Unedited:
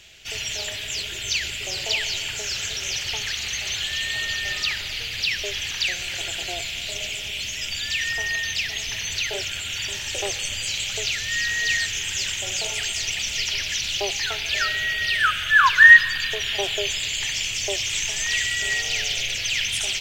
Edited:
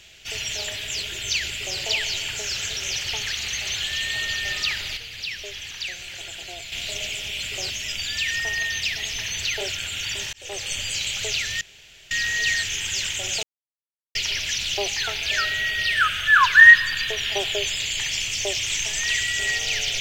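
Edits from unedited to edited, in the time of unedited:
1.52–1.79 copy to 7.43
4.97–6.72 gain -7 dB
10.06–10.46 fade in
11.34 insert room tone 0.50 s
12.66–13.38 mute

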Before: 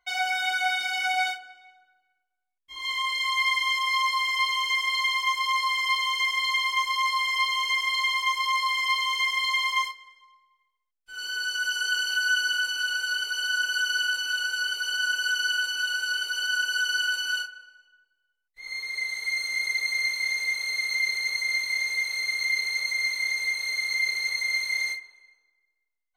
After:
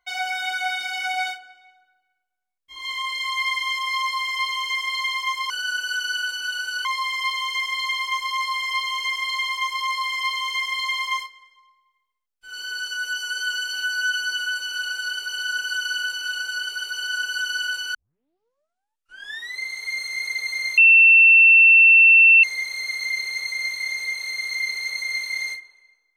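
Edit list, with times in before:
11.52–12.73 stretch 1.5×
14.85–16.2 move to 5.5
17.34 tape start 1.66 s
20.17–21.83 bleep 2690 Hz -8.5 dBFS

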